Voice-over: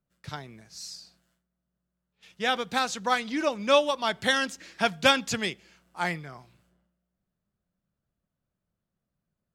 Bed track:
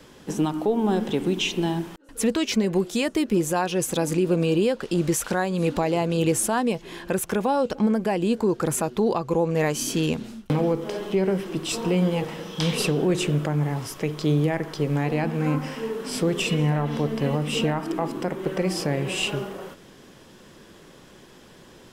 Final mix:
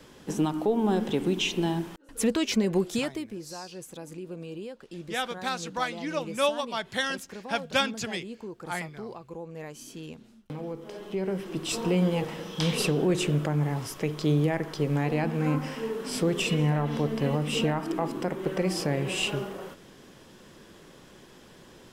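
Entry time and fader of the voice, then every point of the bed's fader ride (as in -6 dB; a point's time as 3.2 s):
2.70 s, -4.5 dB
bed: 2.94 s -2.5 dB
3.37 s -17.5 dB
10.28 s -17.5 dB
11.73 s -2.5 dB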